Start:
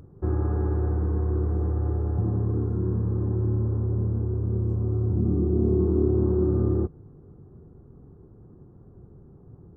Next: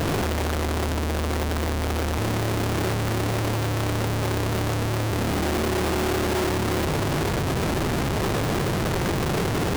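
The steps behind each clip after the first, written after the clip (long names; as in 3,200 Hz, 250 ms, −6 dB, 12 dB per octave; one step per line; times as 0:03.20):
sign of each sample alone
low-shelf EQ 160 Hz −5 dB
level +3.5 dB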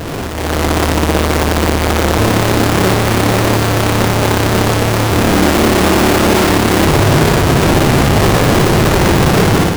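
automatic gain control gain up to 12 dB
on a send: flutter between parallel walls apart 10 metres, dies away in 0.53 s
on the sum: level +1 dB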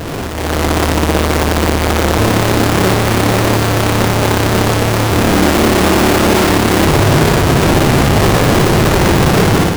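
no processing that can be heard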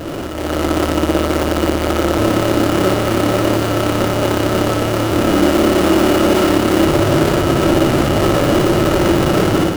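hollow resonant body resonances 330/570/1,300/2,900 Hz, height 10 dB, ringing for 35 ms
level −7 dB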